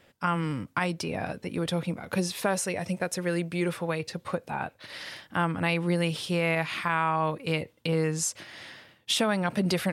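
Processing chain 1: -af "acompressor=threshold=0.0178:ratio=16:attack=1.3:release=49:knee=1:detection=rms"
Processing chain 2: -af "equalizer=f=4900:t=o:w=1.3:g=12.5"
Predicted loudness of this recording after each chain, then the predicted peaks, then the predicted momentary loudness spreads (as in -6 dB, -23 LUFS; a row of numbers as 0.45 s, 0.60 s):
-41.0 LUFS, -26.0 LUFS; -25.0 dBFS, -6.0 dBFS; 4 LU, 11 LU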